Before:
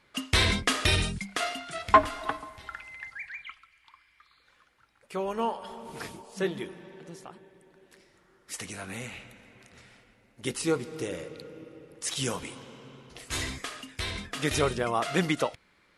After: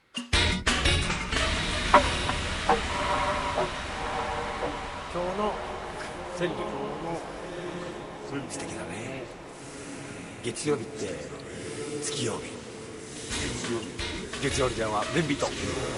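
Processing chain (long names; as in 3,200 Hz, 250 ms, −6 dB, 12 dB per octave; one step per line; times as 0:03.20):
phase-vocoder pitch shift with formants kept −1.5 semitones
feedback delay with all-pass diffusion 1,294 ms, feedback 47%, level −4 dB
delay with pitch and tempo change per echo 248 ms, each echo −4 semitones, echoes 3, each echo −6 dB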